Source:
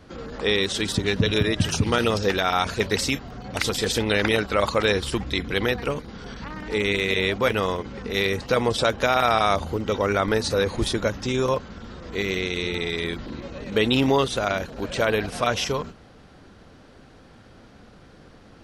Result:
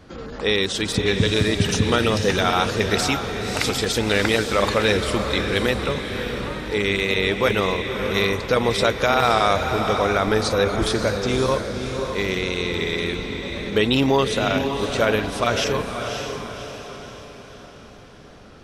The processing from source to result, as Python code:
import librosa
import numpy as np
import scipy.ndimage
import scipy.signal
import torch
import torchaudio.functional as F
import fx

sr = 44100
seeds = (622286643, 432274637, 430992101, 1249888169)

y = fx.echo_diffused(x, sr, ms=571, feedback_pct=48, wet_db=-6)
y = fx.wow_flutter(y, sr, seeds[0], rate_hz=2.1, depth_cents=23.0)
y = y * 10.0 ** (1.5 / 20.0)